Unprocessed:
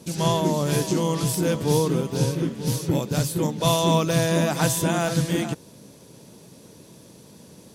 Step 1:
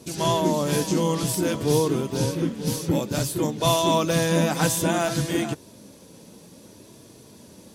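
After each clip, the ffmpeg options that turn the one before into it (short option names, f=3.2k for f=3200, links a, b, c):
-af "flanger=delay=2.8:depth=1.1:regen=-54:speed=0.56:shape=sinusoidal,volume=4.5dB"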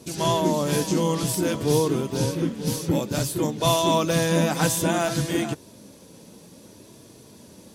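-af anull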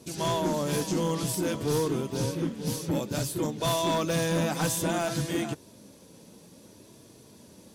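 -af "volume=17dB,asoftclip=hard,volume=-17dB,volume=-4.5dB"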